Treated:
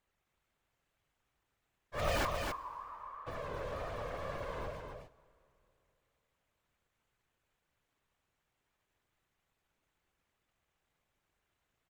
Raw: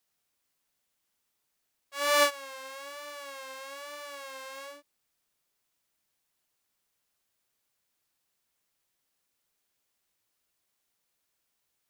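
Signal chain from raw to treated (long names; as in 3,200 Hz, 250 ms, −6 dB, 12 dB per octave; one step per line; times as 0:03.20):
adaptive Wiener filter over 9 samples
in parallel at +2 dB: downward compressor, threshold −37 dBFS, peak gain reduction 19 dB
on the sum: tape wow and flutter 100 cents
half-wave rectification
0:02.25–0:03.27: four-pole ladder band-pass 1,100 Hz, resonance 80%
wave folding −25.5 dBFS
random phases in short frames
on a send: single-tap delay 266 ms −5 dB
on the sum: dense smooth reverb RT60 3.2 s, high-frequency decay 0.75×, DRR 20 dB
level +1.5 dB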